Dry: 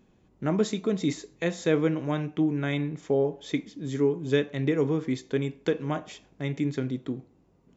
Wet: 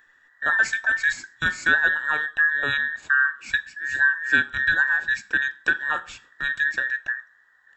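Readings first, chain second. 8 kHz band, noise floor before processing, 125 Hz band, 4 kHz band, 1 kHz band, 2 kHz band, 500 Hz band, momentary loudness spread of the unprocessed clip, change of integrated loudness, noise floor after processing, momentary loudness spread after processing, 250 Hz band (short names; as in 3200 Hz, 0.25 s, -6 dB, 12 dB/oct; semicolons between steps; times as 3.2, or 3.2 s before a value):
n/a, -63 dBFS, -15.5 dB, +6.0 dB, +8.0 dB, +22.0 dB, -15.5 dB, 9 LU, +6.5 dB, -59 dBFS, 8 LU, -16.0 dB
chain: band inversion scrambler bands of 2000 Hz; gain +4 dB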